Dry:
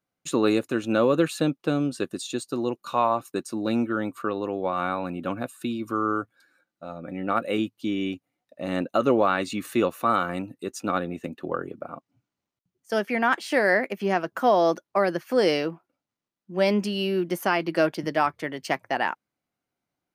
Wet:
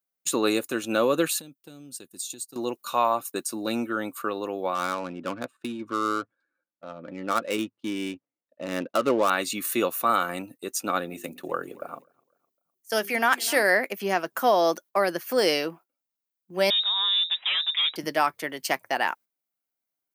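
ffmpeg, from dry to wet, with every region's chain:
-filter_complex "[0:a]asettb=1/sr,asplit=3[a][b][c];[a]atrim=end=1.394[d];[b]atrim=start=1.39:end=2.56,asetpts=PTS-STARTPTS,afade=t=in:d=0.004:c=qsin,afade=t=out:st=1.166:d=0.004:c=qsin,equalizer=f=1k:w=0.3:g=-14.5,acompressor=threshold=-36dB:ratio=16:attack=3.2:release=140:knee=1:detection=peak[e];[c]atrim=start=2.556[f];[d][e]acrossfade=d=0.004:c1=hsin:c2=qsin[g];[g][f]acrossfade=d=0.004:c1=qsin:c2=hsin,asettb=1/sr,asplit=3[h][i][j];[h]atrim=end=4.754[k];[i]atrim=start=4.75:end=9.3,asetpts=PTS-STARTPTS,afade=t=in:d=0.004:c=qsin,afade=t=out:st=4.546:d=0.004:c=qsin,adynamicsmooth=sensitivity=4.5:basefreq=1.4k,bandreject=f=750:w=6.8[l];[j]atrim=start=9.296[m];[k][l]acrossfade=d=0.004:c1=hsin:c2=qsin[n];[n][m]acrossfade=d=0.004:c1=qsin:c2=hsin,asettb=1/sr,asplit=3[o][p][q];[o]atrim=end=11.104[r];[p]atrim=start=11.1:end=13.63,asetpts=PTS-STARTPTS,afade=t=in:d=0.004:c=qsin,afade=t=out:st=2.526:d=0.004:c=qsin,highshelf=f=4.3k:g=5,bandreject=f=50:t=h:w=6,bandreject=f=100:t=h:w=6,bandreject=f=150:t=h:w=6,bandreject=f=200:t=h:w=6,bandreject=f=250:t=h:w=6,bandreject=f=300:t=h:w=6,bandreject=f=350:t=h:w=6,bandreject=f=400:t=h:w=6,aecho=1:1:253|506|759:0.0944|0.0397|0.0167,atrim=end_sample=111573[s];[q]atrim=start=13.626[t];[r][s]acrossfade=d=0.004:c1=hsin:c2=qsin[u];[u][t]acrossfade=d=0.004:c1=qsin:c2=hsin,asettb=1/sr,asplit=3[v][w][x];[v]atrim=end=16.704[y];[w]atrim=start=16.7:end=17.96,asetpts=PTS-STARTPTS,afade=t=in:d=0.004:c=qsin,afade=t=out:st=1.256:d=0.004:c=qsin,volume=24.5dB,asoftclip=hard,volume=-24.5dB,lowpass=f=3.3k:t=q:w=0.5098,lowpass=f=3.3k:t=q:w=0.6013,lowpass=f=3.3k:t=q:w=0.9,lowpass=f=3.3k:t=q:w=2.563,afreqshift=-3900[z];[x]atrim=start=17.956[aa];[y][z]acrossfade=d=0.004:c1=hsin:c2=qsin[ab];[ab][aa]acrossfade=d=0.004:c1=qsin:c2=hsin,agate=range=-10dB:threshold=-43dB:ratio=16:detection=peak,aemphasis=mode=production:type=bsi"

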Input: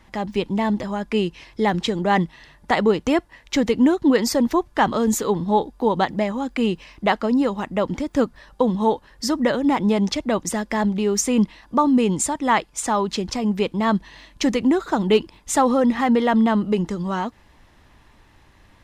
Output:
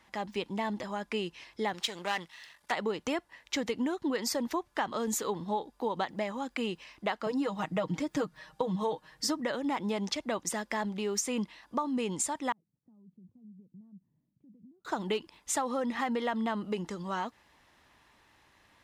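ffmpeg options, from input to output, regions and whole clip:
-filter_complex "[0:a]asettb=1/sr,asplit=3[a][b][c];[a]atrim=end=1.734[d];[b]atrim=start=1.73:end=2.72,asetpts=PTS-STARTPTS,afade=t=in:d=0.004:c=qsin,afade=t=out:st=0.986:d=0.004:c=qsin,aeval=exprs='if(lt(val(0),0),0.447*val(0),val(0))':c=same,tiltshelf=f=860:g=-7.5[e];[c]atrim=start=2.716[f];[d][e]acrossfade=d=0.004:c1=hsin:c2=qsin[g];[g][f]acrossfade=d=0.004:c1=qsin:c2=hsin,asettb=1/sr,asplit=3[h][i][j];[h]atrim=end=7.264[k];[i]atrim=start=7.26:end=9.41,asetpts=PTS-STARTPTS,afade=t=in:d=0.004:c=qsin,afade=t=out:st=2.146:d=0.004:c=qsin,equalizer=f=150:t=o:w=0.86:g=9,aecho=1:1:6.4:0.95,atrim=end_sample=94815[l];[j]atrim=start=9.406[m];[k][l]acrossfade=d=0.004:c1=hsin:c2=qsin[n];[n][m]acrossfade=d=0.004:c1=qsin:c2=hsin,asettb=1/sr,asplit=3[o][p][q];[o]atrim=end=12.524[r];[p]atrim=start=12.52:end=14.85,asetpts=PTS-STARTPTS,afade=t=in:d=0.004:c=qsin,afade=t=out:st=2.326:d=0.004:c=qsin,acompressor=threshold=-33dB:ratio=5:attack=3.2:release=140:knee=1:detection=peak,asuperpass=centerf=150:order=4:qfactor=1.5[s];[q]atrim=start=14.846[t];[r][s]acrossfade=d=0.004:c1=hsin:c2=qsin[u];[u][t]acrossfade=d=0.004:c1=qsin:c2=hsin,highpass=f=100:p=1,lowshelf=f=440:g=-8.5,acompressor=threshold=-22dB:ratio=6,volume=-5.5dB"

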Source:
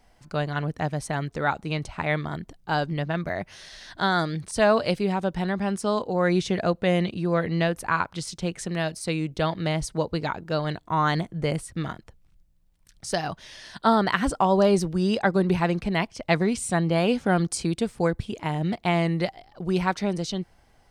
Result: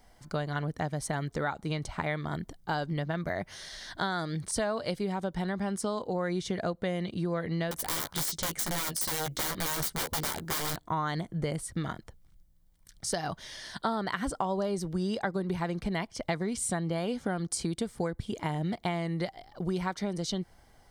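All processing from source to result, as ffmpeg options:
-filter_complex "[0:a]asettb=1/sr,asplit=3[a][b][c];[a]atrim=end=7.714[d];[b]atrim=start=7.71:end=10.76,asetpts=PTS-STARTPTS,afade=t=in:d=0.004:c=qsin,afade=t=out:st=3.046:d=0.004:c=qsin,highshelf=f=3.7k:g=7,aeval=exprs='(mod(16.8*val(0)+1,2)-1)/16.8':c=same,asplit=2[e][f];[f]adelay=13,volume=-6dB[g];[e][g]amix=inputs=2:normalize=0,atrim=end_sample=134505[h];[c]atrim=start=10.756[i];[d][h]acrossfade=d=0.004:c1=hsin:c2=qsin[j];[j][i]acrossfade=d=0.004:c1=qsin:c2=hsin,highshelf=f=9.5k:g=6.5,bandreject=f=2.6k:w=6.5,acompressor=threshold=-28dB:ratio=6"

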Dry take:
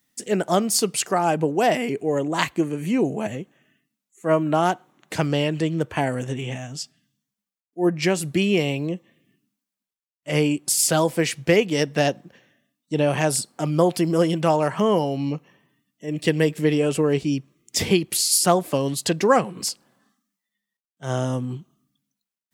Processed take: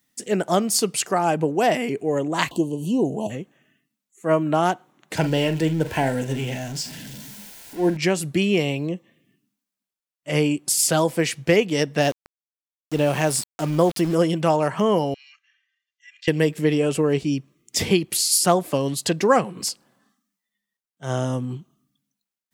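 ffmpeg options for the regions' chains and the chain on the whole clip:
-filter_complex "[0:a]asettb=1/sr,asplit=3[a][b][c];[a]atrim=end=2.514[d];[b]atrim=start=2.51:end=3.3,asetpts=PTS-STARTPTS,afade=t=in:d=0.004:c=qsin,afade=t=out:st=0.786:d=0.004:c=qsin,asuperstop=centerf=1700:order=20:qfactor=1,acompressor=mode=upward:threshold=-25dB:ratio=2.5:attack=3.2:release=140:knee=2.83:detection=peak[e];[c]atrim=start=3.296[f];[d][e]acrossfade=d=0.004:c1=hsin:c2=qsin[g];[g][f]acrossfade=d=0.004:c1=qsin:c2=hsin,asettb=1/sr,asplit=3[h][i][j];[h]atrim=end=5.174[k];[i]atrim=start=5.17:end=7.97,asetpts=PTS-STARTPTS,afade=t=in:d=0.004:c=qsin,afade=t=out:st=2.796:d=0.004:c=qsin,aeval=exprs='val(0)+0.5*0.0251*sgn(val(0))':c=same,asuperstop=centerf=1200:order=8:qfactor=5,asplit=2[l][m];[m]adelay=44,volume=-11dB[n];[l][n]amix=inputs=2:normalize=0,atrim=end_sample=123480[o];[j]atrim=start=7.966[p];[k][o]acrossfade=d=0.004:c1=hsin:c2=qsin[q];[q][p]acrossfade=d=0.004:c1=qsin:c2=hsin,asettb=1/sr,asplit=3[r][s][t];[r]atrim=end=12.014[u];[s]atrim=start=12.01:end=14.15,asetpts=PTS-STARTPTS,afade=t=in:d=0.004:c=qsin,afade=t=out:st=2.136:d=0.004:c=qsin,acompressor=mode=upward:threshold=-34dB:ratio=2.5:attack=3.2:release=140:knee=2.83:detection=peak,aeval=exprs='val(0)*gte(abs(val(0)),0.0266)':c=same[v];[t]atrim=start=14.146[w];[u][v]acrossfade=d=0.004:c1=hsin:c2=qsin[x];[x][w]acrossfade=d=0.004:c1=qsin:c2=hsin,asettb=1/sr,asplit=3[y][z][aa];[y]atrim=end=15.144[ab];[z]atrim=start=15.14:end=16.28,asetpts=PTS-STARTPTS,afade=t=in:d=0.004:c=qsin,afade=t=out:st=1.136:d=0.004:c=qsin,asuperpass=centerf=3400:order=12:qfactor=0.61,highshelf=f=2.6k:g=-9,aecho=1:1:2.5:0.63,atrim=end_sample=50274[ac];[aa]atrim=start=16.276[ad];[ab][ac]acrossfade=d=0.004:c1=hsin:c2=qsin[ae];[ae][ad]acrossfade=d=0.004:c1=qsin:c2=hsin"

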